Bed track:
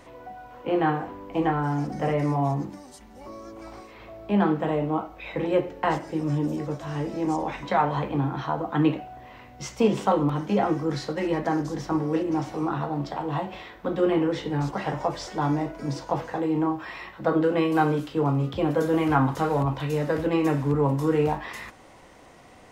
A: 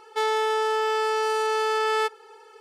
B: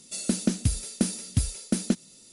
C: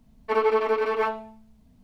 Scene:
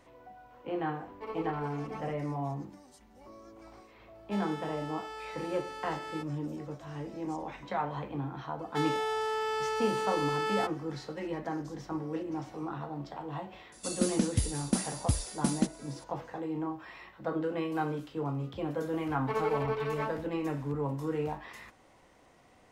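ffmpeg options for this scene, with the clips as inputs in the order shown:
-filter_complex "[3:a]asplit=2[a][b];[1:a]asplit=2[c][d];[0:a]volume=-10.5dB[e];[a]bandreject=f=1.6k:w=5.1[f];[c]highpass=470[g];[f]atrim=end=1.83,asetpts=PTS-STARTPTS,volume=-17.5dB,afade=t=in:d=0.004:c=hsin,afade=t=out:st=1.826:d=0.004:c=hsin,adelay=920[h];[g]atrim=end=2.6,asetpts=PTS-STARTPTS,volume=-17dB,afade=t=in:d=0.004:c=hsin,afade=t=out:st=2.596:d=0.004:c=hsin,adelay=4150[i];[d]atrim=end=2.6,asetpts=PTS-STARTPTS,volume=-8dB,afade=t=in:d=0.004:c=hsin,afade=t=out:st=2.596:d=0.004:c=hsin,adelay=8590[j];[2:a]atrim=end=2.32,asetpts=PTS-STARTPTS,volume=-4dB,afade=t=in:d=0.004:c=hsin,afade=t=out:st=2.316:d=0.004:c=hsin,adelay=13720[k];[b]atrim=end=1.83,asetpts=PTS-STARTPTS,volume=-9.5dB,afade=t=in:d=0.004:c=hsin,afade=t=out:st=1.826:d=0.004:c=hsin,adelay=18990[l];[e][h][i][j][k][l]amix=inputs=6:normalize=0"

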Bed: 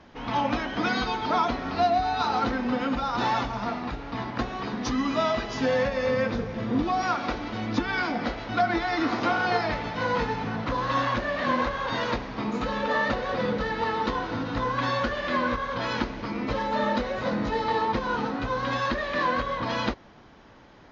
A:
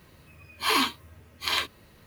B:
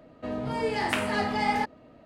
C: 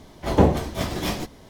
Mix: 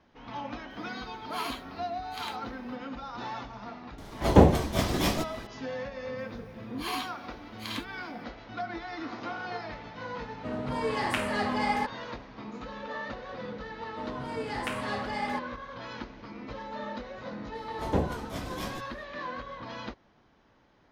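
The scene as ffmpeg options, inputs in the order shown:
-filter_complex "[1:a]asplit=2[a][b];[3:a]asplit=2[c][d];[2:a]asplit=2[e][f];[0:a]volume=-12dB[g];[c]acompressor=mode=upward:threshold=-39dB:ratio=2.5:attack=3.2:release=140:knee=2.83:detection=peak[h];[d]aresample=32000,aresample=44100[i];[a]atrim=end=2.06,asetpts=PTS-STARTPTS,volume=-14dB,afade=t=in:d=0.004:c=hsin,afade=t=out:st=2.056:d=0.004:c=hsin,adelay=700[j];[h]atrim=end=1.49,asetpts=PTS-STARTPTS,volume=-0.5dB,afade=t=in:d=0.004:c=hsin,afade=t=out:st=1.486:d=0.004:c=hsin,adelay=3980[k];[b]atrim=end=2.06,asetpts=PTS-STARTPTS,volume=-11.5dB,afade=t=in:d=0.004:c=hsin,afade=t=out:st=2.056:d=0.004:c=hsin,adelay=272538S[l];[e]atrim=end=2.05,asetpts=PTS-STARTPTS,volume=-2.5dB,afade=t=in:d=0.004:c=hsin,afade=t=out:st=2.046:d=0.004:c=hsin,adelay=10210[m];[f]atrim=end=2.05,asetpts=PTS-STARTPTS,volume=-7dB,afade=t=in:d=0.004:c=hsin,afade=t=out:st=2.046:d=0.004:c=hsin,adelay=13740[n];[i]atrim=end=1.49,asetpts=PTS-STARTPTS,volume=-11dB,afade=t=in:d=0.004:c=hsin,afade=t=out:st=1.486:d=0.004:c=hsin,adelay=17550[o];[g][j][k][l][m][n][o]amix=inputs=7:normalize=0"

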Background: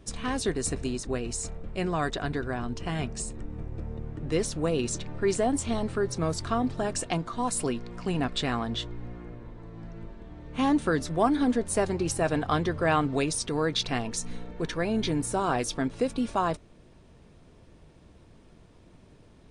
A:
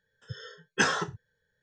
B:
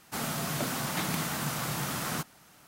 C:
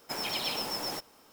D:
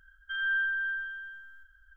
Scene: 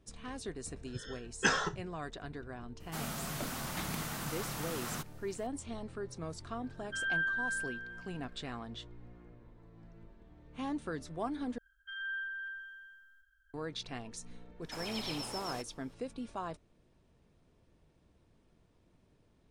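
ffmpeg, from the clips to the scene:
-filter_complex "[4:a]asplit=2[a][b];[0:a]volume=-13.5dB[c];[b]highshelf=f=2.6k:g=10.5[d];[3:a]lowpass=11k[e];[c]asplit=2[f][g];[f]atrim=end=11.584[h];[d]atrim=end=1.96,asetpts=PTS-STARTPTS,volume=-13dB[i];[g]atrim=start=13.536[j];[1:a]atrim=end=1.62,asetpts=PTS-STARTPTS,volume=-4dB,afade=t=in:d=0.004:c=hsin,afade=t=out:st=1.616:d=0.004:c=hsin,adelay=650[k];[2:a]atrim=end=2.67,asetpts=PTS-STARTPTS,volume=-7dB,afade=t=in:d=0.004:c=hsin,afade=t=out:st=2.666:d=0.004:c=hsin,adelay=2800[l];[a]atrim=end=1.96,asetpts=PTS-STARTPTS,volume=-4dB,afade=t=in:d=0.004:c=hsin,afade=t=out:st=1.956:d=0.004:c=hsin,adelay=6630[m];[e]atrim=end=1.32,asetpts=PTS-STARTPTS,volume=-8dB,afade=t=in:d=0.004:c=hsin,afade=t=out:st=1.316:d=0.004:c=hsin,adelay=14620[n];[h][i]acrossfade=d=0.004:c1=hsin:c2=hsin[o];[o][j]acrossfade=d=0.004:c1=hsin:c2=hsin[p];[p][k][l][m][n]amix=inputs=5:normalize=0"

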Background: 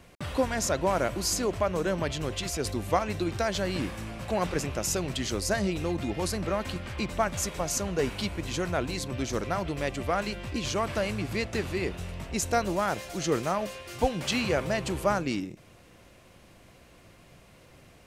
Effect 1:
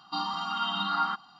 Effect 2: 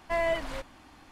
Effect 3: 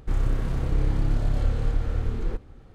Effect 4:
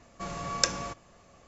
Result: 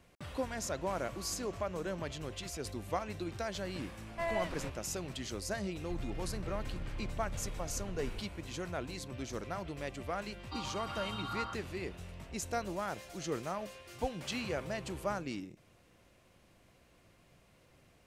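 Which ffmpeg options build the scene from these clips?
-filter_complex "[0:a]volume=-10dB[a];[4:a]acompressor=threshold=-47dB:ratio=6:attack=3.2:release=140:knee=1:detection=peak[b];[3:a]acompressor=threshold=-22dB:ratio=6:attack=3.2:release=140:knee=1:detection=peak[c];[b]atrim=end=1.47,asetpts=PTS-STARTPTS,volume=-4.5dB,afade=t=in:d=0.004:c=hsin,afade=t=out:st=1.466:d=0.004:c=hsin,adelay=700[d];[2:a]atrim=end=1.11,asetpts=PTS-STARTPTS,volume=-7.5dB,afade=t=in:d=0.004:c=hsin,afade=t=out:st=1.106:d=0.004:c=hsin,adelay=4080[e];[c]atrim=end=2.74,asetpts=PTS-STARTPTS,volume=-14.5dB,afade=t=in:d=0.004:c=hsin,afade=t=out:st=2.736:d=0.004:c=hsin,adelay=5830[f];[1:a]atrim=end=1.39,asetpts=PTS-STARTPTS,volume=-12dB,afade=t=in:d=0.004:c=hsin,afade=t=out:st=1.386:d=0.004:c=hsin,adelay=10390[g];[a][d][e][f][g]amix=inputs=5:normalize=0"

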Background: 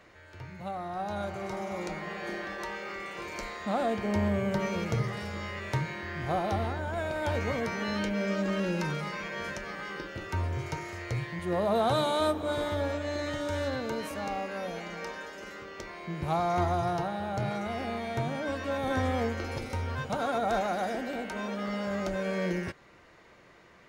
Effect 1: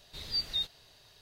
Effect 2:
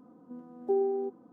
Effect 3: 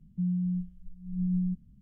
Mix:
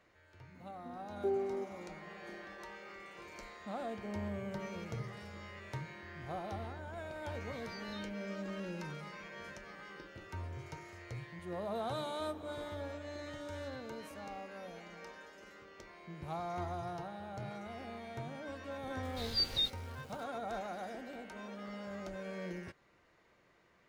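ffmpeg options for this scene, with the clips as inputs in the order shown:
-filter_complex "[1:a]asplit=2[a][b];[0:a]volume=-12dB[c];[2:a]crystalizer=i=2:c=0[d];[a]acompressor=threshold=-36dB:ratio=6:attack=3.2:release=140:knee=1:detection=peak[e];[b]aeval=exprs='val(0)*gte(abs(val(0)),0.002)':c=same[f];[d]atrim=end=1.32,asetpts=PTS-STARTPTS,volume=-6.5dB,afade=t=in:d=0.004:c=hsin,afade=t=out:st=1.316:d=0.004:c=hsin,adelay=550[g];[e]atrim=end=1.21,asetpts=PTS-STARTPTS,volume=-15.5dB,afade=t=in:d=0.004:c=hsin,afade=t=out:st=1.206:d=0.004:c=hsin,adelay=7390[h];[f]atrim=end=1.21,asetpts=PTS-STARTPTS,volume=-0.5dB,afade=t=in:d=0.004:c=hsin,afade=t=out:st=1.206:d=0.004:c=hsin,adelay=19030[i];[c][g][h][i]amix=inputs=4:normalize=0"

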